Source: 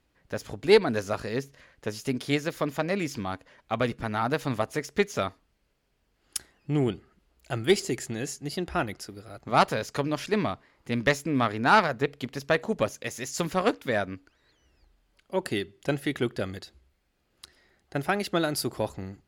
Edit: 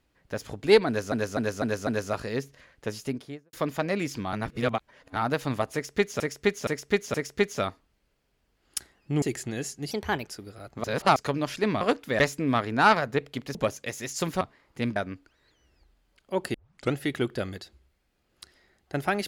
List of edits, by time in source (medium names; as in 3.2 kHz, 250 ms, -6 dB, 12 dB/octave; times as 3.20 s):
0.87–1.12 s: loop, 5 plays
1.91–2.53 s: studio fade out
3.33–4.16 s: reverse
4.73–5.20 s: loop, 4 plays
6.81–7.85 s: delete
8.54–8.98 s: speed 119%
9.54–9.86 s: reverse
10.51–11.06 s: swap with 13.59–13.97 s
12.42–12.73 s: delete
15.55 s: tape start 0.39 s